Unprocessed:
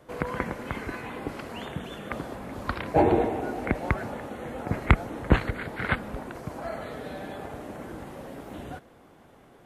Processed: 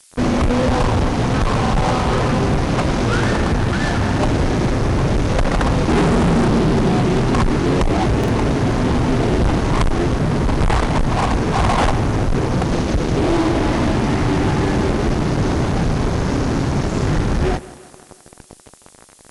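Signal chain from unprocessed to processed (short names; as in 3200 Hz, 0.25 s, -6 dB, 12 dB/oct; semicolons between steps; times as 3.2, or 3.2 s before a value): low shelf 130 Hz +8 dB; in parallel at -2 dB: compressor, threshold -35 dBFS, peak gain reduction 24.5 dB; on the sum: fuzz box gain 36 dB, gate -41 dBFS; added noise violet -50 dBFS; on a send: thinning echo 83 ms, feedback 59%, high-pass 220 Hz, level -17.5 dB; on the sum: speed mistake 15 ips tape played at 7.5 ips; stuck buffer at 1.62/8.19, samples 2048, times 1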